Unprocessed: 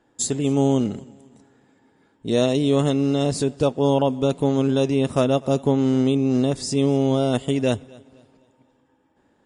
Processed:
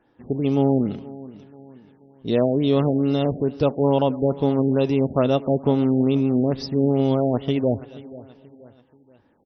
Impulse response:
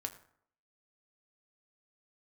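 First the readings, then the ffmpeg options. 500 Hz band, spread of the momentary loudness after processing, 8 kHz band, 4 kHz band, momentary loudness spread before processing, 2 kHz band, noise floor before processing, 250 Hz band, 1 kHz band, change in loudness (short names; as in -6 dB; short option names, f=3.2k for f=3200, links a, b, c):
0.0 dB, 11 LU, under -25 dB, -5.0 dB, 4 LU, -4.0 dB, -63 dBFS, 0.0 dB, 0.0 dB, 0.0 dB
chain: -af "aecho=1:1:481|962|1443:0.112|0.0482|0.0207,afftfilt=real='re*lt(b*sr/1024,820*pow(6200/820,0.5+0.5*sin(2*PI*2.3*pts/sr)))':imag='im*lt(b*sr/1024,820*pow(6200/820,0.5+0.5*sin(2*PI*2.3*pts/sr)))':win_size=1024:overlap=0.75"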